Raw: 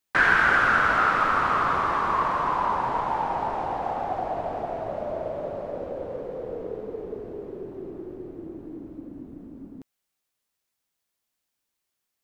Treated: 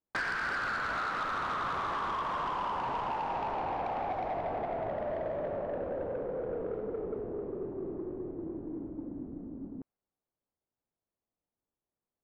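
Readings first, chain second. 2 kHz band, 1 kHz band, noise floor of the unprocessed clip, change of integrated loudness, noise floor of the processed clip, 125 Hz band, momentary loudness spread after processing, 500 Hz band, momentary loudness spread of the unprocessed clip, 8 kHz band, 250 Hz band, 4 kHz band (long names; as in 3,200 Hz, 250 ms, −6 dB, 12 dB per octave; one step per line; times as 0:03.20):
−13.0 dB, −9.0 dB, −82 dBFS, −10.5 dB, below −85 dBFS, −6.0 dB, 9 LU, −4.0 dB, 20 LU, can't be measured, −3.5 dB, −6.5 dB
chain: low-pass that shuts in the quiet parts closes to 710 Hz, open at −20 dBFS
downward compressor 12 to 1, threshold −27 dBFS, peak gain reduction 13 dB
soft clipping −28 dBFS, distortion −15 dB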